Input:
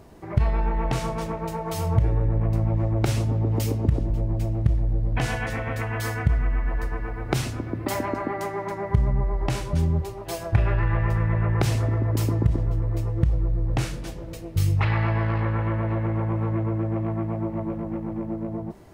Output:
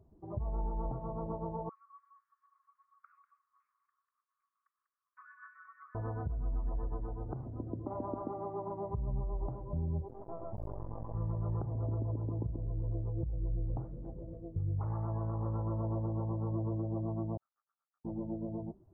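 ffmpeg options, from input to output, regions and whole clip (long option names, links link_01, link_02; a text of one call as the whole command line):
ffmpeg -i in.wav -filter_complex "[0:a]asettb=1/sr,asplit=3[link_01][link_02][link_03];[link_01]atrim=end=1.694[link_04];[link_02]atrim=start=1.69:end=5.95,asetpts=PTS-STARTPTS,afade=type=in:duration=0.004:curve=qsin,afade=type=out:start_time=4.256:duration=0.004:curve=qsin,aphaser=in_gain=1:out_gain=1:delay=1.2:decay=0.3:speed=1.6:type=triangular,asuperpass=centerf=1700:order=20:qfactor=1.1,aecho=1:1:194:0.447,atrim=end_sample=187866[link_05];[link_03]atrim=start=5.946[link_06];[link_04][link_05]acrossfade=duration=0.004:curve1=hsin:curve2=qsin[link_07];[link_07][link_06]acrossfade=duration=0.004:curve1=qsin:curve2=hsin,asettb=1/sr,asplit=3[link_08][link_09][link_10];[link_08]atrim=end=10.084[link_11];[link_09]atrim=start=10.08:end=11.15,asetpts=PTS-STARTPTS,afade=type=in:duration=0.004:curve=qsin,afade=type=out:start_time=1.066:duration=0.004:curve=qsin,adynamicequalizer=threshold=0.00891:dfrequency=620:dqfactor=0.71:tfrequency=620:tqfactor=0.71:attack=5:release=100:ratio=0.375:range=3.5:mode=boostabove:tftype=bell,acompressor=threshold=-24dB:ratio=16:attack=3.2:release=140:knee=1:detection=peak,acrusher=bits=3:dc=4:mix=0:aa=0.000001[link_12];[link_10]atrim=start=11.146[link_13];[link_11][link_12]acrossfade=duration=0.004:curve1=hsin:curve2=qsin[link_14];[link_14][link_13]acrossfade=duration=0.004:curve1=qsin:curve2=hsin,asettb=1/sr,asplit=3[link_15][link_16][link_17];[link_15]atrim=end=17.374[link_18];[link_16]atrim=start=17.37:end=18.05,asetpts=PTS-STARTPTS,afade=type=in:duration=0.004:curve=qsin,afade=type=out:start_time=0.676:duration=0.004:curve=qsin,asuperpass=centerf=1500:order=20:qfactor=2.1,aeval=exprs='sgn(val(0))*max(abs(val(0))-0.00119,0)':channel_layout=same[link_19];[link_17]atrim=start=18.046[link_20];[link_18][link_19]acrossfade=duration=0.004:curve1=hsin:curve2=qsin[link_21];[link_21][link_20]acrossfade=duration=0.004:curve1=qsin:curve2=hsin,lowpass=frequency=1100:width=0.5412,lowpass=frequency=1100:width=1.3066,afftdn=noise_reduction=15:noise_floor=-38,alimiter=limit=-18dB:level=0:latency=1:release=334,volume=-8.5dB" out.wav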